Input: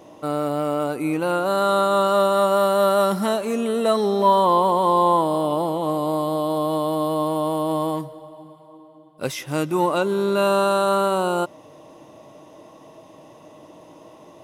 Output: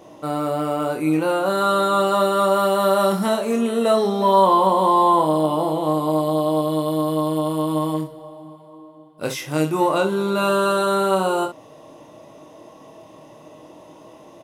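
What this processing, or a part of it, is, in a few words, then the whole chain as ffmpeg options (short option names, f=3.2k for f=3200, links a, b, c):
slapback doubling: -filter_complex "[0:a]asettb=1/sr,asplit=3[a][b][c];[a]atrim=end=6.614[d];[b]atrim=start=6.61:end=8.18,asetpts=PTS-STARTPTS,afade=t=in:d=0.004:c=qsin,afade=t=out:st=1.566:d=0.004:c=qsin,equalizer=f=780:w=1.5:g=-5.5[e];[c]atrim=start=8.176[f];[d][e]acrossfade=d=0.004:c1=hsin:c2=qsin[g];[g][f]acrossfade=d=0.004:c1=qsin:c2=hsin,asplit=3[h][i][j];[i]adelay=26,volume=-5dB[k];[j]adelay=64,volume=-10dB[l];[h][k][l]amix=inputs=3:normalize=0"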